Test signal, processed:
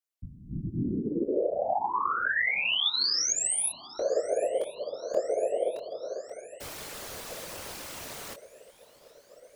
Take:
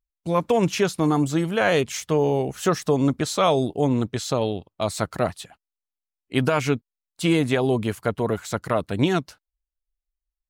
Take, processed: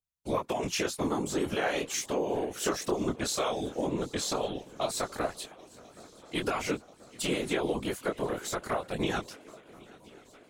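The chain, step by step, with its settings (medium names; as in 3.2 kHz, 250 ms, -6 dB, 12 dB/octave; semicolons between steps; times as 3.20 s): tone controls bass -10 dB, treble +3 dB; compression, threshold -23 dBFS; shuffle delay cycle 1031 ms, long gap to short 3:1, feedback 63%, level -23 dB; chorus 2 Hz, delay 19.5 ms, depth 5.5 ms; whisper effect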